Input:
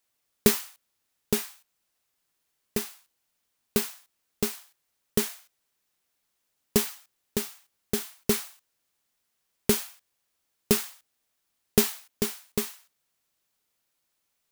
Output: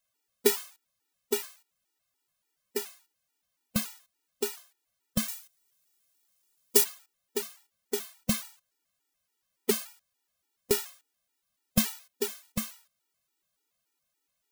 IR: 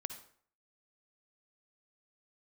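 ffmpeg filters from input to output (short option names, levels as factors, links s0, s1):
-filter_complex "[0:a]asettb=1/sr,asplit=3[s0][s1][s2];[s0]atrim=end=5.284[s3];[s1]atrim=start=5.28:end=6.84,asetpts=PTS-STARTPTS,afade=t=in:d=0.004:c=qsin,afade=t=out:st=1.556:d=0.004:c=qsin,highshelf=f=4200:g=10[s4];[s2]atrim=start=6.836[s5];[s3][s4]acrossfade=d=0.004:c1=hsin:c2=qsin[s6];[s6][s5]acrossfade=d=0.004:c1=qsin:c2=hsin,afftfilt=real='re*gt(sin(2*PI*3.5*pts/sr)*(1-2*mod(floor(b*sr/1024/250),2)),0)':imag='im*gt(sin(2*PI*3.5*pts/sr)*(1-2*mod(floor(b*sr/1024/250),2)),0)':win_size=1024:overlap=0.75"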